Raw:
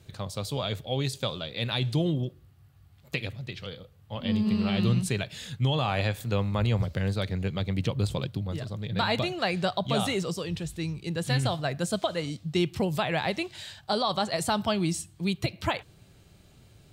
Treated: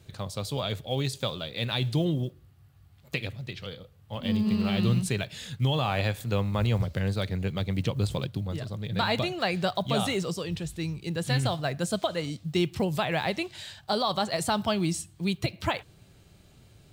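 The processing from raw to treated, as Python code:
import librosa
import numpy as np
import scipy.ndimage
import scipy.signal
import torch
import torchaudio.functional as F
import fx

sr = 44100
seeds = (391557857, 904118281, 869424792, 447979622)

y = fx.block_float(x, sr, bits=7)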